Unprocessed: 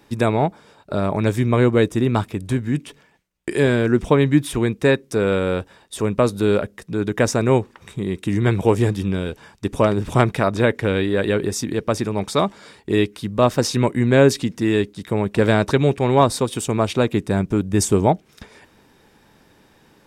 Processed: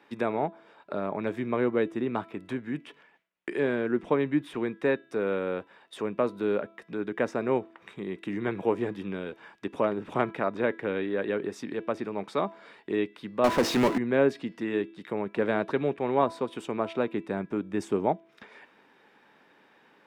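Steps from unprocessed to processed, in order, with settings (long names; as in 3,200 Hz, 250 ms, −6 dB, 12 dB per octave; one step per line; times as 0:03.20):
three-way crossover with the lows and the highs turned down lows −23 dB, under 180 Hz, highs −21 dB, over 3,000 Hz
hum removal 331.1 Hz, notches 16
0:13.44–0:13.98: power curve on the samples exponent 0.5
one half of a high-frequency compander encoder only
level −8.5 dB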